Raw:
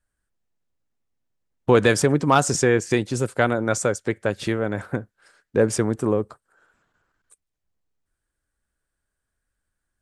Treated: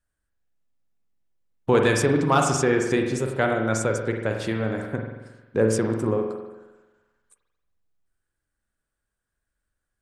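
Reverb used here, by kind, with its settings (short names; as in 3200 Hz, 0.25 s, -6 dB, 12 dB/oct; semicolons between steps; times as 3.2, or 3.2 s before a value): spring tank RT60 1.1 s, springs 45 ms, chirp 35 ms, DRR 2.5 dB; gain -3.5 dB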